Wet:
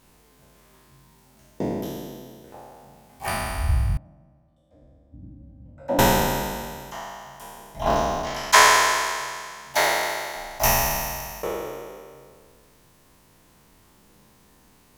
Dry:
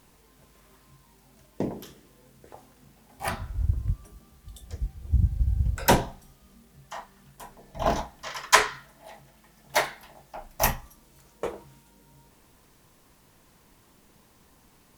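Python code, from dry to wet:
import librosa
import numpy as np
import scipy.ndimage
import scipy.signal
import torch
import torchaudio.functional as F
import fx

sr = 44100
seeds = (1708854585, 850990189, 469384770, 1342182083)

y = fx.spec_trails(x, sr, decay_s=2.1)
y = fx.double_bandpass(y, sr, hz=410.0, octaves=0.97, at=(3.97, 5.99))
y = y * 10.0 ** (-1.0 / 20.0)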